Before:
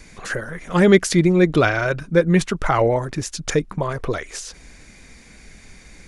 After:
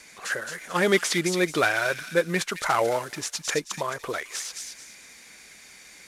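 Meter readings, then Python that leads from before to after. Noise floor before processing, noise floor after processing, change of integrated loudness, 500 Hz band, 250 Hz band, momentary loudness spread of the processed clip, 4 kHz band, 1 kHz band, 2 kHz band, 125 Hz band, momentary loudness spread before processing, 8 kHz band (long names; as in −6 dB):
−46 dBFS, −50 dBFS, −6.5 dB, −7.5 dB, −12.0 dB, 14 LU, 0.0 dB, −3.5 dB, −1.5 dB, −15.0 dB, 14 LU, −0.5 dB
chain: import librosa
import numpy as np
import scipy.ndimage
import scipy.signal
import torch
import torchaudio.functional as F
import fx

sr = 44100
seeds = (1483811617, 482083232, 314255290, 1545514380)

y = fx.cvsd(x, sr, bps=64000)
y = fx.highpass(y, sr, hz=920.0, slope=6)
y = fx.echo_wet_highpass(y, sr, ms=218, feedback_pct=30, hz=3000.0, wet_db=-3.5)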